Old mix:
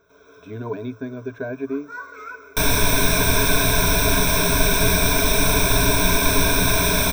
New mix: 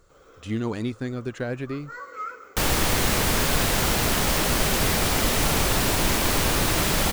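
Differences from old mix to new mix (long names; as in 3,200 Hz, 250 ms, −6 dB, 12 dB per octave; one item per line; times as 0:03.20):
speech: remove resonant band-pass 500 Hz, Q 0.7
master: remove EQ curve with evenly spaced ripples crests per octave 1.6, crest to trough 18 dB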